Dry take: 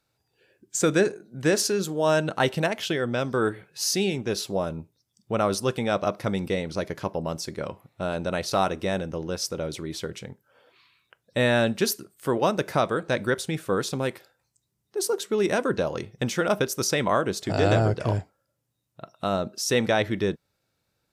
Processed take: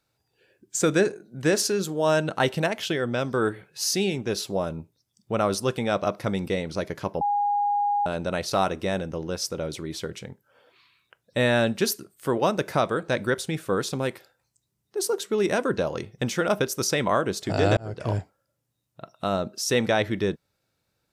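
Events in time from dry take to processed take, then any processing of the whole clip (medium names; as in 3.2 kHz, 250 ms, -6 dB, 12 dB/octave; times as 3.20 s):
7.21–8.06 s: bleep 819 Hz -20.5 dBFS
17.77–18.17 s: fade in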